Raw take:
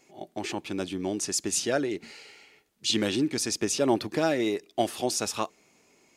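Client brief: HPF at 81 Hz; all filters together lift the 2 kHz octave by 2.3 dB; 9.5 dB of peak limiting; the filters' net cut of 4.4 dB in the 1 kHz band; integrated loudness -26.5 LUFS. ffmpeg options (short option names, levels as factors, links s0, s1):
-af "highpass=81,equalizer=f=1000:t=o:g=-8,equalizer=f=2000:t=o:g=5.5,volume=1.68,alimiter=limit=0.168:level=0:latency=1"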